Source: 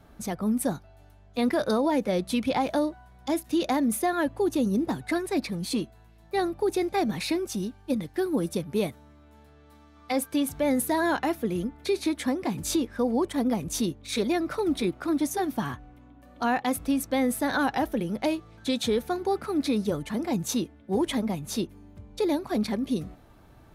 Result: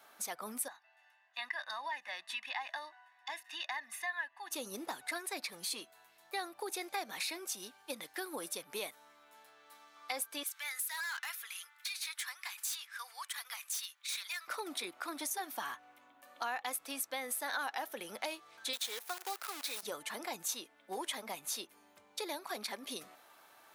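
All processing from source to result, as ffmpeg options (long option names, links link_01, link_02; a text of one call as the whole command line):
ffmpeg -i in.wav -filter_complex "[0:a]asettb=1/sr,asplit=3[link_01][link_02][link_03];[link_01]atrim=end=0.684[link_04];[link_02]atrim=start=0.68:end=4.51,asetpts=PTS-STARTPTS,afade=type=in:duration=0.004:curve=qsin,afade=type=out:start_time=3.826:duration=0.004:curve=qsin,bandpass=frequency=1900:width_type=q:width=1.8,aecho=1:1:1.1:0.92,atrim=end_sample=168903[link_05];[link_03]atrim=start=4.506[link_06];[link_04][link_05]acrossfade=duration=0.004:curve1=hsin:curve2=qsin[link_07];[link_07][link_06]acrossfade=duration=0.004:curve1=qsin:curve2=hsin,asettb=1/sr,asplit=3[link_08][link_09][link_10];[link_08]atrim=end=10.434[link_11];[link_09]atrim=start=10.43:end=14.48,asetpts=PTS-STARTPTS,afade=type=in:duration=0.004:curve=qsin,afade=type=out:start_time=4.046:duration=0.004:curve=qsin,highpass=frequency=1300:width=0.5412,highpass=frequency=1300:width=1.3066,volume=32.5dB,asoftclip=hard,volume=-32.5dB[link_12];[link_10]atrim=start=14.476[link_13];[link_11][link_12]acrossfade=duration=0.004:curve1=hsin:curve2=qsin[link_14];[link_14][link_13]acrossfade=duration=0.004:curve1=qsin:curve2=hsin,asettb=1/sr,asplit=3[link_15][link_16][link_17];[link_15]atrim=end=18.734[link_18];[link_16]atrim=start=18.73:end=19.83,asetpts=PTS-STARTPTS,afade=type=in:duration=0.004:curve=qsin,afade=type=out:start_time=1.096:duration=0.004:curve=qsin,highpass=frequency=710:poles=1,acrusher=bits=7:dc=4:mix=0:aa=0.000001[link_19];[link_17]atrim=start=19.826[link_20];[link_18][link_19]acrossfade=duration=0.004:curve1=hsin:curve2=qsin[link_21];[link_21][link_20]acrossfade=duration=0.004:curve1=qsin:curve2=hsin,highpass=910,highshelf=frequency=8100:gain=6,acompressor=threshold=-41dB:ratio=2.5,volume=2dB" out.wav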